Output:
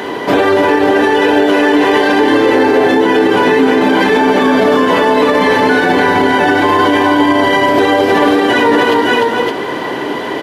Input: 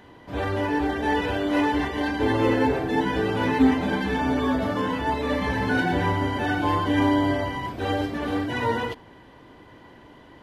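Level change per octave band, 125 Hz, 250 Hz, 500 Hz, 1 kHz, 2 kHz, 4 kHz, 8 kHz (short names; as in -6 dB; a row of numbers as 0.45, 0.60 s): +2.0 dB, +12.0 dB, +17.0 dB, +14.5 dB, +15.5 dB, +16.0 dB, n/a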